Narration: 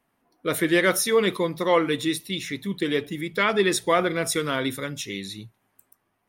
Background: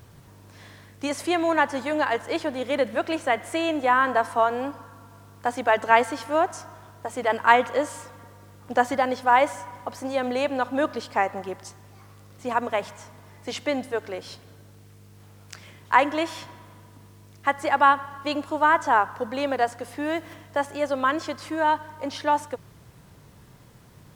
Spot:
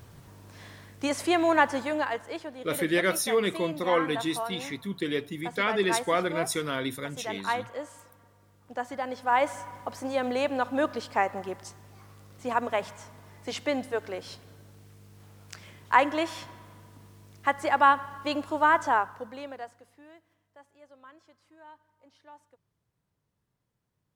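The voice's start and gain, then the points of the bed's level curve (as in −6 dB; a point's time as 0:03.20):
2.20 s, −5.0 dB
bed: 0:01.71 −0.5 dB
0:02.54 −12.5 dB
0:08.83 −12.5 dB
0:09.59 −2.5 dB
0:18.84 −2.5 dB
0:20.27 −29 dB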